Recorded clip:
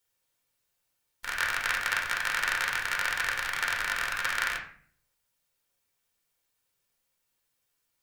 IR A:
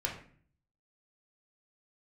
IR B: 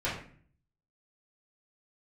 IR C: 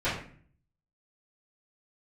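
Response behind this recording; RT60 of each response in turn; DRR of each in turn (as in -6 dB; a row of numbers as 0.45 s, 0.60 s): A; 0.50 s, 0.50 s, 0.50 s; -1.5 dB, -10.5 dB, -15.5 dB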